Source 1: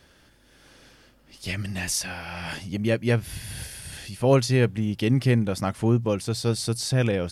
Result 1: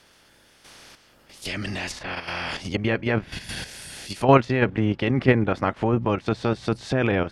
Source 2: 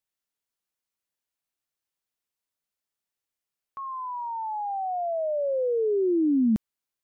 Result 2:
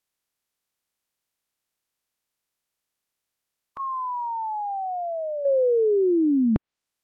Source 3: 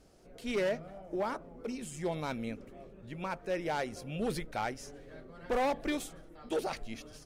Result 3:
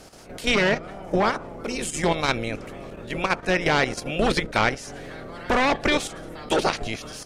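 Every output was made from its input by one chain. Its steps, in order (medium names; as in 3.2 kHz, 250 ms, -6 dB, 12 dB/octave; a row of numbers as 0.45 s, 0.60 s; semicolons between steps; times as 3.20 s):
spectral peaks clipped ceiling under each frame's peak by 14 dB; level held to a coarse grid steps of 9 dB; low-pass that closes with the level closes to 2.1 kHz, closed at -27 dBFS; normalise loudness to -24 LUFS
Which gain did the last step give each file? +6.5 dB, +7.5 dB, +16.5 dB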